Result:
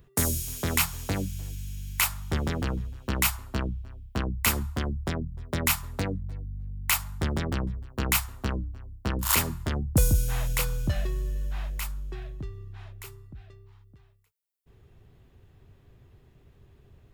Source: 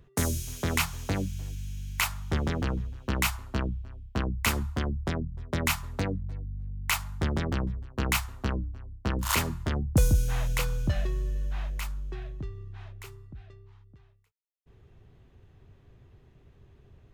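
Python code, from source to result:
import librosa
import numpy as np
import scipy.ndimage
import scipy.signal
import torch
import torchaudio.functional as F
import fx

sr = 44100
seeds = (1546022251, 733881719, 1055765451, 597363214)

y = fx.high_shelf(x, sr, hz=8100.0, db=11.0)
y = fx.notch(y, sr, hz=6200.0, q=19.0)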